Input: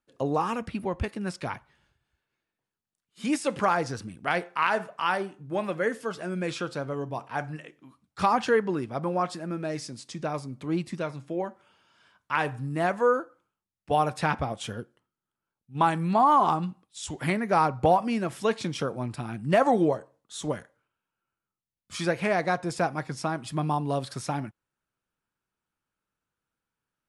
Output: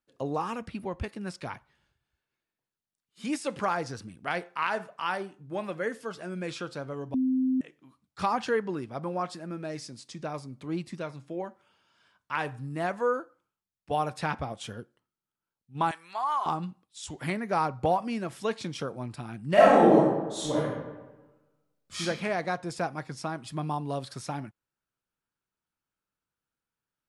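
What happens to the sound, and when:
7.14–7.61 s: bleep 259 Hz -18 dBFS
15.91–16.46 s: high-pass 1.1 kHz
19.53–22.00 s: reverb throw, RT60 1.2 s, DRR -8 dB
whole clip: peaking EQ 4.5 kHz +2 dB; trim -4.5 dB

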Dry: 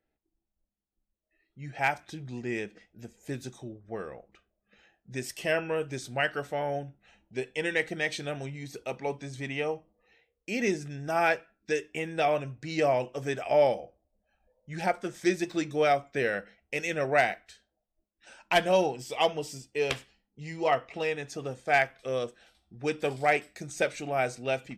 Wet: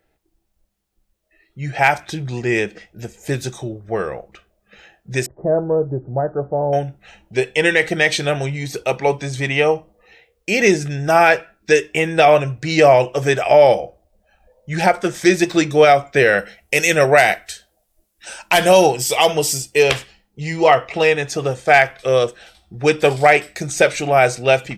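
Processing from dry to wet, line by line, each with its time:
5.26–6.73 s: Gaussian low-pass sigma 11 samples
16.38–19.83 s: peaking EQ 12 kHz +12.5 dB 1.5 oct
whole clip: peaking EQ 250 Hz -9.5 dB 0.4 oct; loudness maximiser +17 dB; trim -1 dB

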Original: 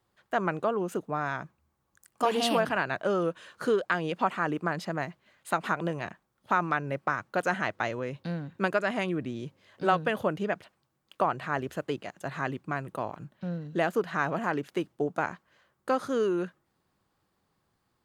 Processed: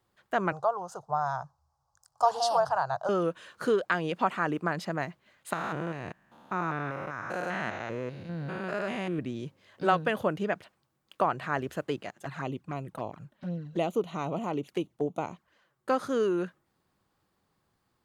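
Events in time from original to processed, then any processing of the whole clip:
0.52–3.09 s: FFT filter 140 Hz 0 dB, 250 Hz -29 dB, 790 Hz +8 dB, 1.4 kHz -3 dB, 2.3 kHz -25 dB, 5.1 kHz +5 dB, 13 kHz -12 dB
5.53–9.19 s: spectrogram pixelated in time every 200 ms
12.11–15.89 s: touch-sensitive flanger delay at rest 9.7 ms, full sweep at -29 dBFS

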